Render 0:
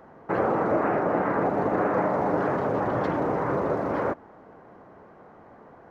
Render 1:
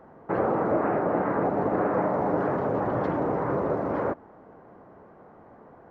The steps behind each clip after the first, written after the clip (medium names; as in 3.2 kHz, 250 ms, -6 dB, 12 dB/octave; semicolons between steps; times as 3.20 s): treble shelf 2.1 kHz -9.5 dB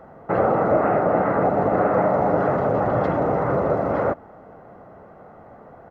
comb 1.5 ms, depth 35%; trim +5.5 dB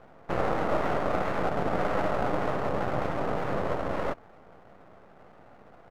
half-wave rectifier; trim -4.5 dB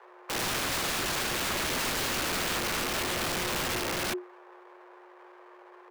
frequency shift +360 Hz; integer overflow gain 25.5 dB